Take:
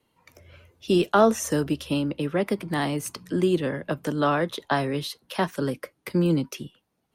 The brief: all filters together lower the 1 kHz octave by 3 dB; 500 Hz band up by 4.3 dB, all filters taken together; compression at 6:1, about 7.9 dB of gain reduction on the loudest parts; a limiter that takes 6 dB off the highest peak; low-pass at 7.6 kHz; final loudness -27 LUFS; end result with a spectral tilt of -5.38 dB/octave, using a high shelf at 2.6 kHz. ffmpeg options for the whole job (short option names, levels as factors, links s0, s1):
-af "lowpass=7600,equalizer=f=500:t=o:g=8,equalizer=f=1000:t=o:g=-8.5,highshelf=f=2600:g=3,acompressor=threshold=0.112:ratio=6,volume=1.12,alimiter=limit=0.168:level=0:latency=1"